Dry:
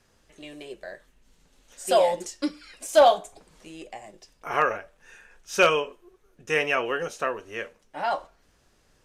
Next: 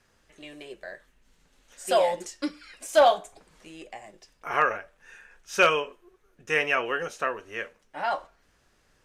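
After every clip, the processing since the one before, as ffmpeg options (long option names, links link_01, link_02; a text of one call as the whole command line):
ffmpeg -i in.wav -af "equalizer=frequency=1700:width_type=o:width=1.5:gain=4.5,volume=-3dB" out.wav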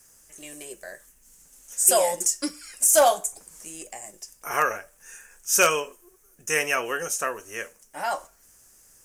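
ffmpeg -i in.wav -af "aexciter=amount=6.2:drive=9.4:freq=5800" out.wav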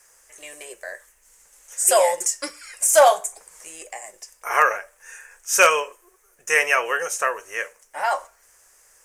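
ffmpeg -i in.wav -af "equalizer=frequency=125:width_type=o:width=1:gain=-7,equalizer=frequency=250:width_type=o:width=1:gain=-9,equalizer=frequency=500:width_type=o:width=1:gain=9,equalizer=frequency=1000:width_type=o:width=1:gain=8,equalizer=frequency=2000:width_type=o:width=1:gain=10,equalizer=frequency=4000:width_type=o:width=1:gain=3,equalizer=frequency=8000:width_type=o:width=1:gain=4,volume=-4.5dB" out.wav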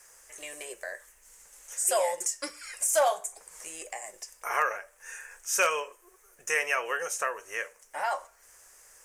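ffmpeg -i in.wav -af "acompressor=threshold=-40dB:ratio=1.5" out.wav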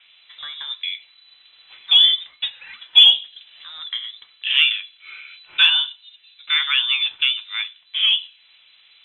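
ffmpeg -i in.wav -af "lowpass=frequency=3400:width_type=q:width=0.5098,lowpass=frequency=3400:width_type=q:width=0.6013,lowpass=frequency=3400:width_type=q:width=0.9,lowpass=frequency=3400:width_type=q:width=2.563,afreqshift=-4000,aexciter=amount=4.5:drive=3:freq=2900,volume=4dB" out.wav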